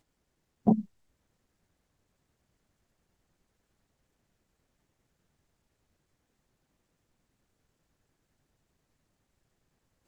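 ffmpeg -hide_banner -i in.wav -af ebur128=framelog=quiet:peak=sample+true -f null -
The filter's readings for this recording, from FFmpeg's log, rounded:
Integrated loudness:
  I:         -28.7 LUFS
  Threshold: -39.5 LUFS
Loudness range:
  LRA:         3.0 LU
  Threshold: -57.3 LUFS
  LRA low:   -39.5 LUFS
  LRA high:  -36.5 LUFS
Sample peak:
  Peak:      -10.5 dBFS
True peak:
  Peak:      -10.5 dBFS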